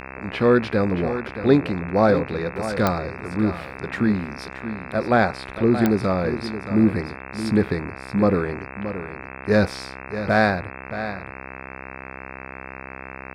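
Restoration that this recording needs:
click removal
hum removal 65.8 Hz, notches 40
echo removal 625 ms −11 dB

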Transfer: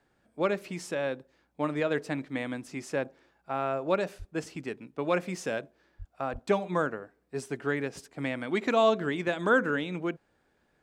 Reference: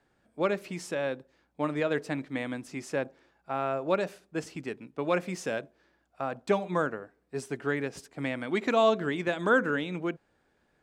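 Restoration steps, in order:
high-pass at the plosives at 0:04.18/0:05.98/0:06.32

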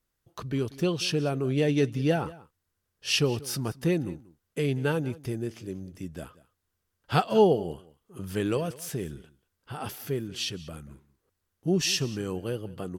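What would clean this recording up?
echo removal 186 ms −20 dB

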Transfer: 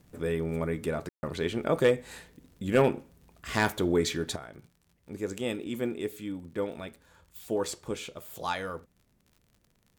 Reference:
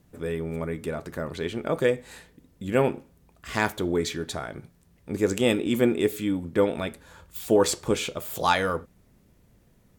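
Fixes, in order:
clipped peaks rebuilt −14.5 dBFS
click removal
ambience match 0:01.09–0:01.23
level 0 dB, from 0:04.36 +10 dB

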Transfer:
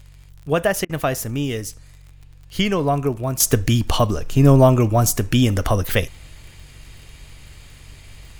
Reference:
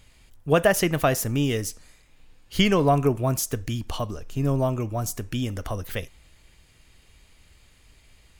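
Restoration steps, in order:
click removal
hum removal 46.7 Hz, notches 3
repair the gap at 0:00.85, 43 ms
level correction −11.5 dB, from 0:03.40

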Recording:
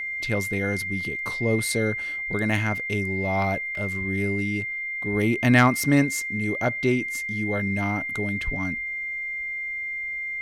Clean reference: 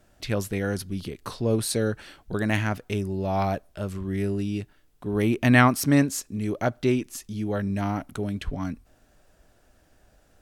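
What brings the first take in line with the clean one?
clipped peaks rebuilt −7.5 dBFS
notch filter 2,100 Hz, Q 30
repair the gap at 0:03.75/0:08.41, 1.6 ms

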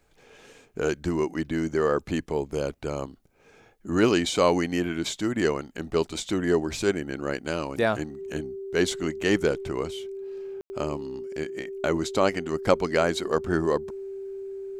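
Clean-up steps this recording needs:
notch filter 390 Hz, Q 30
ambience match 0:10.61–0:10.70

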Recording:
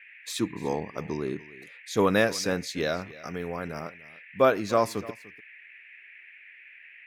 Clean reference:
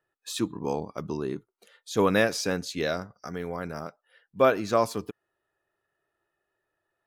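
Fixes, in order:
noise reduction from a noise print 30 dB
echo removal 295 ms −19.5 dB

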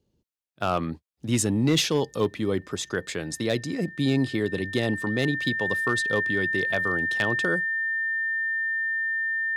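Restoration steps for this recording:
clipped peaks rebuilt −14.5 dBFS
notch filter 1,800 Hz, Q 30

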